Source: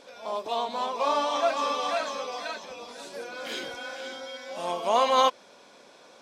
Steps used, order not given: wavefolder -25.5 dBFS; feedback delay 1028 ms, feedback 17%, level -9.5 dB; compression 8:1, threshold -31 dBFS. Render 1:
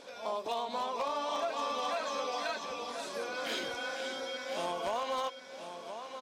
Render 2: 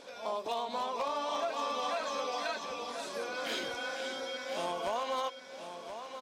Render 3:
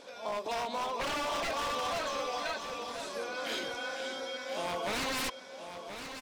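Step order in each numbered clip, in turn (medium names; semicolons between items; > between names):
compression > feedback delay > wavefolder; compression > wavefolder > feedback delay; wavefolder > compression > feedback delay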